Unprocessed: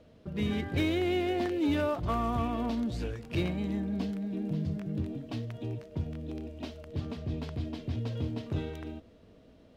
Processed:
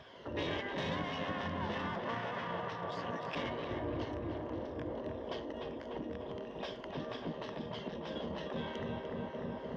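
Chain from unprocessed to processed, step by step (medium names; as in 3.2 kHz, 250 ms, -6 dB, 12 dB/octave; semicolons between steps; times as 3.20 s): drifting ripple filter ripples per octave 1.8, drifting -2.1 Hz, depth 8 dB; saturation -33.5 dBFS, distortion -8 dB; distance through air 160 m; filtered feedback delay 297 ms, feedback 80%, low-pass 2.3 kHz, level -5 dB; compression 6:1, threshold -43 dBFS, peak gain reduction 12.5 dB; rippled EQ curve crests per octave 1.2, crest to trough 7 dB; spectral gate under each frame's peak -10 dB weak; high-pass 77 Hz; band-stop 2.4 kHz, Q 24; trim +14.5 dB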